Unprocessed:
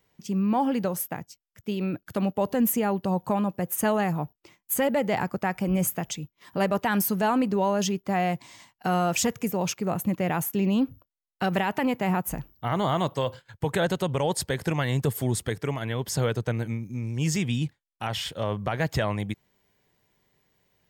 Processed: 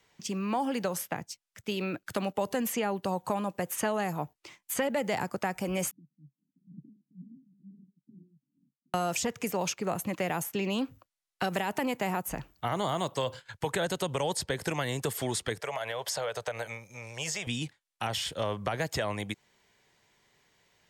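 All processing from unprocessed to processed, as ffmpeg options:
-filter_complex "[0:a]asettb=1/sr,asplit=3[a][b][c];[a]atrim=end=5.914[d];[b]atrim=start=5.91:end=8.94,asetpts=PTS-STARTPTS,afade=t=in:d=0.004:c=qsin,afade=t=out:st=3.026:d=0.004:c=qsin,aeval=exprs='0.0335*(abs(mod(val(0)/0.0335+3,4)-2)-1)':c=same,asuperpass=centerf=200:order=12:qfactor=1.2,aeval=exprs='val(0)*pow(10,-25*(0.5-0.5*cos(2*PI*2.2*n/s))/20)':c=same[e];[c]atrim=start=8.936[f];[d][e]acrossfade=d=0.004:c1=hsin:c2=qsin[g];[g][f]acrossfade=d=0.004:c1=qsin:c2=hsin,asettb=1/sr,asplit=3[h][i][j];[h]atrim=end=15.604[k];[i]atrim=start=15.6:end=17.47,asetpts=PTS-STARTPTS,afade=t=in:d=0.004:c=qsin,afade=t=out:st=1.866:d=0.004:c=qsin,lowshelf=f=410:t=q:w=3:g=-12.5,acompressor=threshold=-30dB:ratio=4:attack=3.2:release=140:knee=1:detection=peak[l];[j]atrim=start=17.466[m];[k][l]acrossfade=d=0.004:c1=hsin:c2=qsin[n];[n][m]acrossfade=d=0.004:c1=qsin:c2=hsin,lowpass=11k,tiltshelf=f=650:g=-5,acrossover=split=300|660|5700[o][p][q][r];[o]acompressor=threshold=-39dB:ratio=4[s];[p]acompressor=threshold=-34dB:ratio=4[t];[q]acompressor=threshold=-37dB:ratio=4[u];[r]acompressor=threshold=-40dB:ratio=4[v];[s][t][u][v]amix=inputs=4:normalize=0,volume=2dB"

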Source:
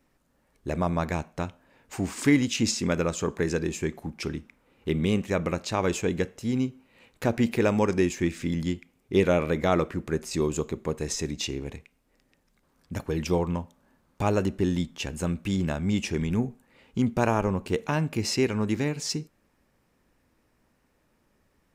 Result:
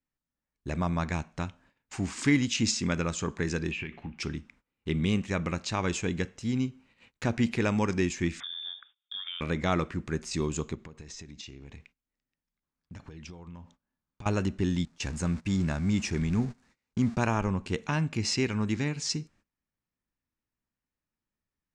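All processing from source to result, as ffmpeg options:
-filter_complex "[0:a]asettb=1/sr,asplit=3[a][b][c];[a]atrim=end=3.714[d];[b]atrim=start=3.71:end=4.18,asetpts=PTS-STARTPTS,afade=t=in:d=0.004:c=qsin,afade=t=out:st=0.466:d=0.004:c=qsin,lowpass=f=2.7k:t=q:w=5.3,acompressor=threshold=-30dB:ratio=10:attack=3.2:release=140:knee=1:detection=peak,asplit=2[e][f];[f]adelay=17,volume=-13dB[g];[e][g]amix=inputs=2:normalize=0,atrim=end_sample=20727[h];[c]atrim=start=4.176[i];[d][h]acrossfade=d=0.004:c1=hsin:c2=qsin[j];[j][i]acrossfade=d=0.004:c1=qsin:c2=hsin,asettb=1/sr,asplit=3[k][l][m];[k]atrim=end=8.404[n];[l]atrim=start=8.4:end=9.41,asetpts=PTS-STARTPTS,afade=t=in:d=0.004:c=qsin,afade=t=out:st=1.006:d=0.004:c=qsin,acompressor=threshold=-35dB:ratio=8:attack=3.2:release=140:knee=1:detection=peak,lowpass=f=3.1k:t=q:w=0.5098,lowpass=f=3.1k:t=q:w=0.6013,lowpass=f=3.1k:t=q:w=0.9,lowpass=f=3.1k:t=q:w=2.563,afreqshift=-3700[o];[m]atrim=start=9.406[p];[n][o]acrossfade=d=0.004:c1=hsin:c2=qsin[q];[q][p]acrossfade=d=0.004:c1=qsin:c2=hsin,asettb=1/sr,asplit=3[r][s][t];[r]atrim=end=10.754[u];[s]atrim=start=10.75:end=14.26,asetpts=PTS-STARTPTS,afade=t=in:d=0.004:c=qsin,afade=t=out:st=3.506:d=0.004:c=qsin,lowpass=6.8k,acompressor=threshold=-39dB:ratio=10:attack=3.2:release=140:knee=1:detection=peak[v];[t]atrim=start=14.256[w];[u][v]acrossfade=d=0.004:c1=hsin:c2=qsin[x];[x][w]acrossfade=d=0.004:c1=qsin:c2=hsin,asettb=1/sr,asplit=3[y][z][aa];[y]atrim=end=14.854[ab];[z]atrim=start=14.85:end=17.18,asetpts=PTS-STARTPTS,afade=t=in:d=0.004:c=qsin,afade=t=out:st=2.326:d=0.004:c=qsin,aeval=exprs='val(0)+0.5*0.0126*sgn(val(0))':c=same,equalizer=f=3.1k:t=o:w=0.49:g=-6.5,agate=range=-20dB:threshold=-37dB:ratio=16:release=100:detection=peak[ac];[aa]atrim=start=17.176[ad];[ab][ac]acrossfade=d=0.004:c1=hsin:c2=qsin[ae];[ae][ad]acrossfade=d=0.004:c1=qsin:c2=hsin,agate=range=-21dB:threshold=-56dB:ratio=16:detection=peak,lowpass=f=8k:w=0.5412,lowpass=f=8k:w=1.3066,equalizer=f=510:t=o:w=1.5:g=-8"

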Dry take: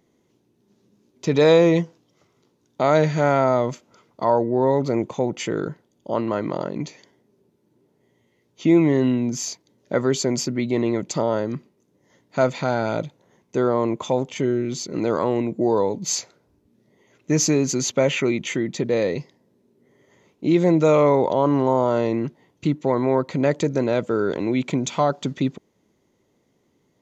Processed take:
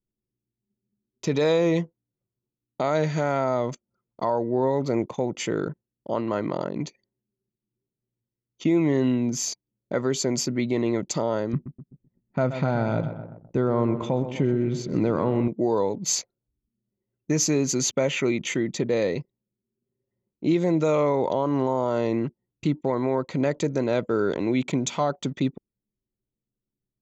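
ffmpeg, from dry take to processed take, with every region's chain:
-filter_complex "[0:a]asettb=1/sr,asplit=3[a][b][c];[a]atrim=end=11.534[d];[b]atrim=start=11.53:end=15.48,asetpts=PTS-STARTPTS,afade=t=in:d=0.004:c=qsin,afade=t=out:st=3.946:d=0.004:c=qsin,bass=f=250:g=9,treble=f=4k:g=-12,asplit=2[e][f];[f]adelay=127,lowpass=f=4.8k:p=1,volume=-12dB,asplit=2[g][h];[h]adelay=127,lowpass=f=4.8k:p=1,volume=0.54,asplit=2[i][j];[j]adelay=127,lowpass=f=4.8k:p=1,volume=0.54,asplit=2[k][l];[l]adelay=127,lowpass=f=4.8k:p=1,volume=0.54,asplit=2[m][n];[n]adelay=127,lowpass=f=4.8k:p=1,volume=0.54,asplit=2[o][p];[p]adelay=127,lowpass=f=4.8k:p=1,volume=0.54[q];[e][g][i][k][m][o][q]amix=inputs=7:normalize=0,atrim=end_sample=174195[r];[c]atrim=start=15.476[s];[d][r]acrossfade=d=0.004:c1=hsin:c2=qsin[t];[t][s]acrossfade=d=0.004:c1=qsin:c2=hsin,anlmdn=0.398,highshelf=f=7.1k:g=4.5,alimiter=limit=-11.5dB:level=0:latency=1:release=279,volume=-1.5dB"

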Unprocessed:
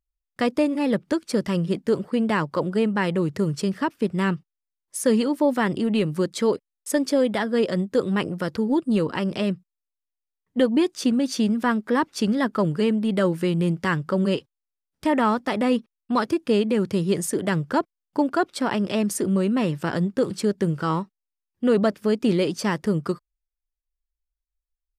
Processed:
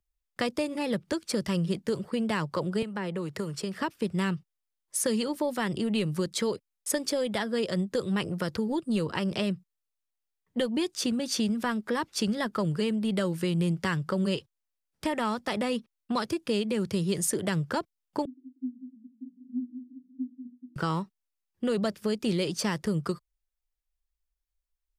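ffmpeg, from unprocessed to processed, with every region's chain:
-filter_complex "[0:a]asettb=1/sr,asplit=3[a][b][c];[a]atrim=end=2.824[d];[b]atrim=start=2.82:end=3.79,asetpts=PTS-STARTPTS,afade=t=in:d=0.004:c=qsin,afade=t=out:st=0.966:d=0.004:c=qsin,acrossover=split=240|620[e][f][g];[e]acompressor=threshold=-39dB:ratio=4[h];[f]acompressor=threshold=-35dB:ratio=4[i];[g]acompressor=threshold=-37dB:ratio=4[j];[h][i][j]amix=inputs=3:normalize=0,bandreject=f=6.2k:w=18[k];[c]atrim=start=3.786[l];[d][k]acrossfade=d=0.004:c1=hsin:c2=qsin[m];[m][l]acrossfade=d=0.004:c1=qsin:c2=hsin,asettb=1/sr,asplit=3[n][o][p];[n]atrim=end=18.254[q];[o]atrim=start=18.25:end=20.76,asetpts=PTS-STARTPTS,afade=t=in:d=0.004:c=qsin,afade=t=out:st=2.506:d=0.004:c=qsin,asuperpass=centerf=260:order=8:qfactor=7.5,aecho=1:1:189:0.282,atrim=end_sample=110691[r];[p]atrim=start=20.756[s];[q][r]acrossfade=d=0.004:c1=hsin:c2=qsin[t];[t][s]acrossfade=d=0.004:c1=qsin:c2=hsin,equalizer=f=270:t=o:w=0.2:g=-9.5,acrossover=split=130|3000[u][v][w];[v]acompressor=threshold=-30dB:ratio=3[x];[u][x][w]amix=inputs=3:normalize=0,volume=1dB"

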